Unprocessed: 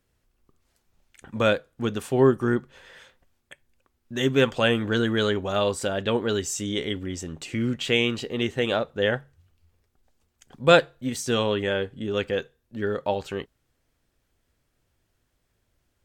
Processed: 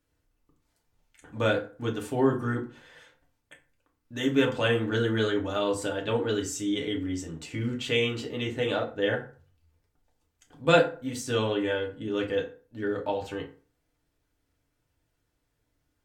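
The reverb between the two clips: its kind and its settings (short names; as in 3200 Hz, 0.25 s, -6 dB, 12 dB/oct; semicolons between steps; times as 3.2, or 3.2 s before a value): FDN reverb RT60 0.4 s, low-frequency decay 1×, high-frequency decay 0.6×, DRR -1 dB; gain -7 dB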